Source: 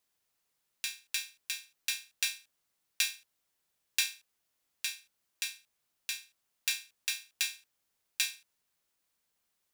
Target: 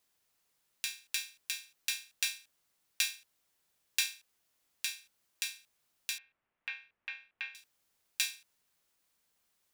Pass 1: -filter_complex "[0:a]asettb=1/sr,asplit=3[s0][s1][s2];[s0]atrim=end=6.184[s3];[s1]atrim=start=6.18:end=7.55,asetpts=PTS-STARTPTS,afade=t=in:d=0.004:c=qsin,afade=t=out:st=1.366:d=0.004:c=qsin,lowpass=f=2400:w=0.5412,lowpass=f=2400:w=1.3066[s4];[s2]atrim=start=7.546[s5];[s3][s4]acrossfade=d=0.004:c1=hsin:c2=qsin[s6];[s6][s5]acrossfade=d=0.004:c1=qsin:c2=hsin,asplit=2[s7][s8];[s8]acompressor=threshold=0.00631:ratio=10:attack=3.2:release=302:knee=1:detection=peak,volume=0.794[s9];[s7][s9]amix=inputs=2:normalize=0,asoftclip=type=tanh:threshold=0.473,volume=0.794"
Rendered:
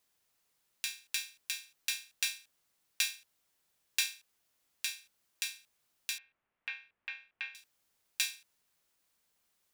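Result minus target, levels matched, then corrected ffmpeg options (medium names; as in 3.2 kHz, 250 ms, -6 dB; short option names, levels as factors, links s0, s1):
saturation: distortion +9 dB
-filter_complex "[0:a]asettb=1/sr,asplit=3[s0][s1][s2];[s0]atrim=end=6.184[s3];[s1]atrim=start=6.18:end=7.55,asetpts=PTS-STARTPTS,afade=t=in:d=0.004:c=qsin,afade=t=out:st=1.366:d=0.004:c=qsin,lowpass=f=2400:w=0.5412,lowpass=f=2400:w=1.3066[s4];[s2]atrim=start=7.546[s5];[s3][s4]acrossfade=d=0.004:c1=hsin:c2=qsin[s6];[s6][s5]acrossfade=d=0.004:c1=qsin:c2=hsin,asplit=2[s7][s8];[s8]acompressor=threshold=0.00631:ratio=10:attack=3.2:release=302:knee=1:detection=peak,volume=0.794[s9];[s7][s9]amix=inputs=2:normalize=0,asoftclip=type=tanh:threshold=0.944,volume=0.794"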